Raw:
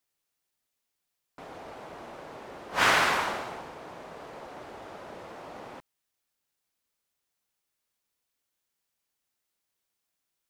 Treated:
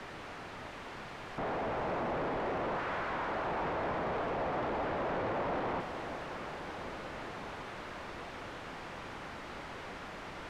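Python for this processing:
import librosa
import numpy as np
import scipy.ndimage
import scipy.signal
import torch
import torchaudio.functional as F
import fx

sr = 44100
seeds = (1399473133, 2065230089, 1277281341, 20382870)

y = np.sign(x) * np.sqrt(np.mean(np.square(x)))
y = scipy.signal.sosfilt(scipy.signal.butter(2, 1600.0, 'lowpass', fs=sr, output='sos'), y)
y = fx.echo_alternate(y, sr, ms=368, hz=1100.0, feedback_pct=81, wet_db=-8.0)
y = y * 10.0 ** (2.5 / 20.0)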